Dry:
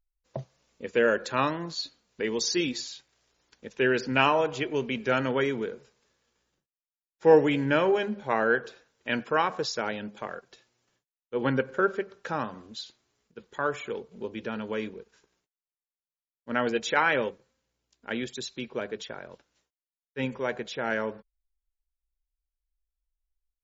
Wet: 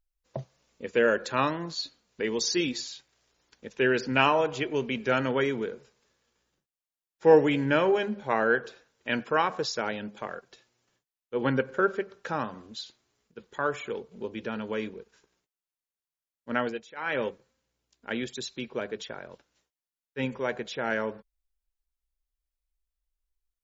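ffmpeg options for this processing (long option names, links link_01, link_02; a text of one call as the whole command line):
ffmpeg -i in.wav -filter_complex "[0:a]asplit=3[link_01][link_02][link_03];[link_01]atrim=end=16.86,asetpts=PTS-STARTPTS,afade=type=out:start_time=16.56:duration=0.3:silence=0.0944061[link_04];[link_02]atrim=start=16.86:end=16.96,asetpts=PTS-STARTPTS,volume=-20.5dB[link_05];[link_03]atrim=start=16.96,asetpts=PTS-STARTPTS,afade=type=in:duration=0.3:silence=0.0944061[link_06];[link_04][link_05][link_06]concat=n=3:v=0:a=1" out.wav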